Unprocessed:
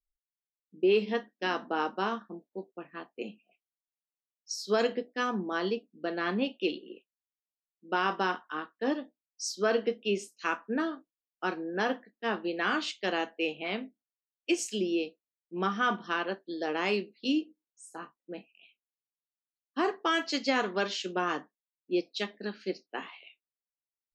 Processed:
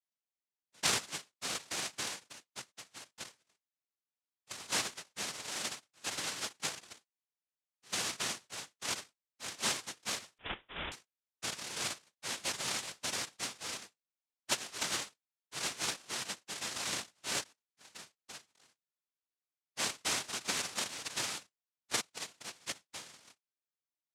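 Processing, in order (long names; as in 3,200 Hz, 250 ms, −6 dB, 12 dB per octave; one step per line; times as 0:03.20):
samples in bit-reversed order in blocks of 256 samples
cochlear-implant simulation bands 1
0:10.38–0:10.92: voice inversion scrambler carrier 3,700 Hz
level −3 dB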